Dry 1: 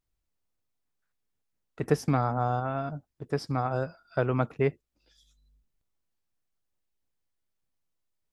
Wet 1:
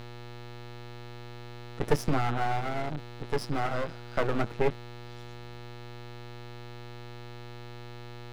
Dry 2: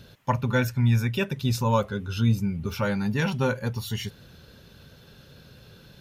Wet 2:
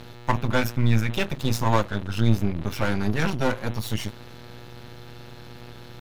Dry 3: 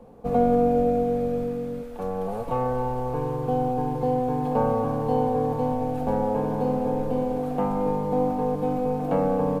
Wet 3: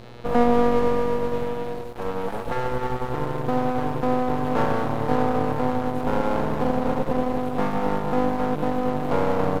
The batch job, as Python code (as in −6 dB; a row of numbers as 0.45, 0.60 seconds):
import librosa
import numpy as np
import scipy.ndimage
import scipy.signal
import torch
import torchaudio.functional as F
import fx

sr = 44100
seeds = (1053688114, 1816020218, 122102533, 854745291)

y = fx.dmg_buzz(x, sr, base_hz=120.0, harmonics=34, level_db=-44.0, tilt_db=-5, odd_only=False)
y = fx.doubler(y, sr, ms=19.0, db=-14.0)
y = np.maximum(y, 0.0)
y = y * 10.0 ** (5.0 / 20.0)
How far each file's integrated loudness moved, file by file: −2.0, +0.5, +0.5 LU